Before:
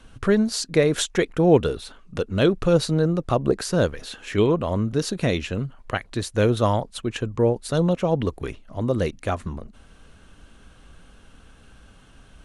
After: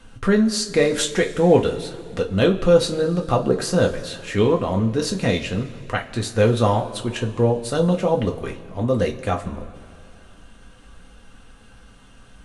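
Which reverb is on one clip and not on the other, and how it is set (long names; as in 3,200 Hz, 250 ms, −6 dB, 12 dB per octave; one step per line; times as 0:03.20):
coupled-rooms reverb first 0.21 s, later 2.6 s, from −21 dB, DRR 0.5 dB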